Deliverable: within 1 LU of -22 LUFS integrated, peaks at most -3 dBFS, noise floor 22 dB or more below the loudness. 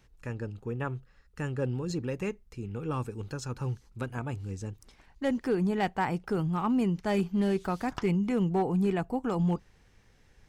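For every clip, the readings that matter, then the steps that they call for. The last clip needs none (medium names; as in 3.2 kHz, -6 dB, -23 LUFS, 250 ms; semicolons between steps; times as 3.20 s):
clipped samples 0.3%; clipping level -19.5 dBFS; loudness -31.0 LUFS; peak level -19.5 dBFS; loudness target -22.0 LUFS
-> clip repair -19.5 dBFS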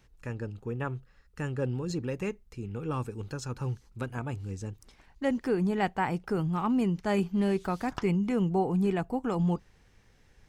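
clipped samples 0.0%; loudness -31.0 LUFS; peak level -15.0 dBFS; loudness target -22.0 LUFS
-> trim +9 dB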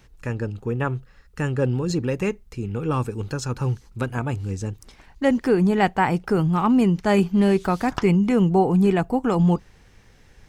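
loudness -22.0 LUFS; peak level -6.0 dBFS; noise floor -53 dBFS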